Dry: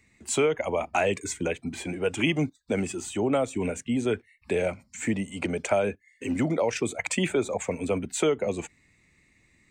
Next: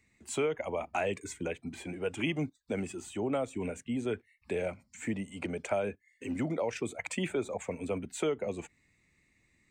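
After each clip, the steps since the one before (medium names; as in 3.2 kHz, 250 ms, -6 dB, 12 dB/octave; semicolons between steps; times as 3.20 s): dynamic bell 6 kHz, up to -4 dB, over -48 dBFS, Q 0.88; trim -7 dB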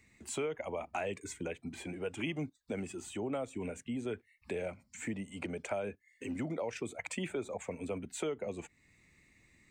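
compression 1.5:1, threshold -55 dBFS, peak gain reduction 10.5 dB; trim +4.5 dB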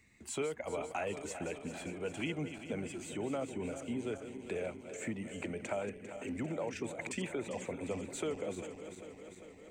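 backward echo that repeats 199 ms, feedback 80%, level -10.5 dB; trim -1 dB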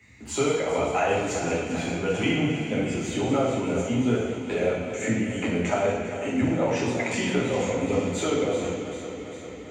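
reverberation RT60 1.0 s, pre-delay 3 ms, DRR -6.5 dB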